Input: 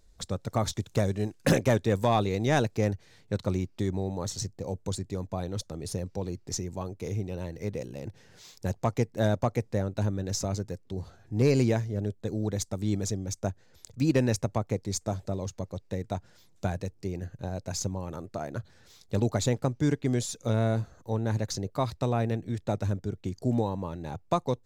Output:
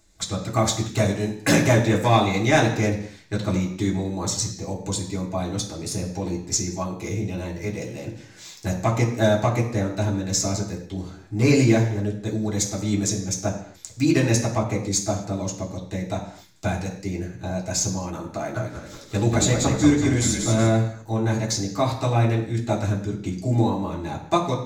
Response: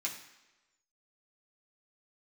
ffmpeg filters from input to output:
-filter_complex "[0:a]asettb=1/sr,asplit=3[link_01][link_02][link_03];[link_01]atrim=end=18.374[link_04];[link_02]atrim=start=18.37:end=20.67,asetpts=PTS-STARTPTS,afade=type=in:duration=0.004:curve=qsin,afade=type=out:start_time=2.296:duration=0.004:curve=qsin,asplit=7[link_05][link_06][link_07][link_08][link_09][link_10][link_11];[link_06]adelay=187,afreqshift=-46,volume=-5dB[link_12];[link_07]adelay=374,afreqshift=-92,volume=-11.2dB[link_13];[link_08]adelay=561,afreqshift=-138,volume=-17.4dB[link_14];[link_09]adelay=748,afreqshift=-184,volume=-23.6dB[link_15];[link_10]adelay=935,afreqshift=-230,volume=-29.8dB[link_16];[link_11]adelay=1122,afreqshift=-276,volume=-36dB[link_17];[link_05][link_12][link_13][link_14][link_15][link_16][link_17]amix=inputs=7:normalize=0,atrim=end_sample=101430[link_18];[link_03]atrim=start=20.666[link_19];[link_04][link_18]acrossfade=duration=0.004:curve1=hsin:curve2=qsin[link_20];[link_20][link_19]acrossfade=duration=0.004:curve1=qsin:curve2=hsin[link_21];[1:a]atrim=start_sample=2205,afade=type=out:start_time=0.33:duration=0.01,atrim=end_sample=14994[link_22];[link_21][link_22]afir=irnorm=-1:irlink=0,volume=7.5dB"

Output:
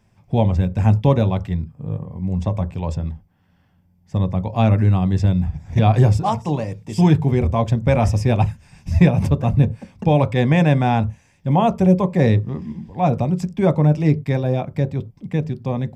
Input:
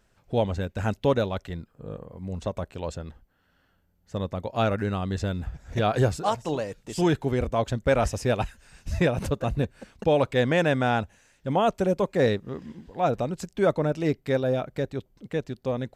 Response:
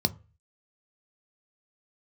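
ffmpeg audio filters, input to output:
-filter_complex "[0:a]asplit=2[link_01][link_02];[link_02]lowpass=3600[link_03];[1:a]atrim=start_sample=2205,afade=type=out:start_time=0.16:duration=0.01,atrim=end_sample=7497[link_04];[link_03][link_04]afir=irnorm=-1:irlink=0,volume=-5.5dB[link_05];[link_01][link_05]amix=inputs=2:normalize=0,volume=-1dB"

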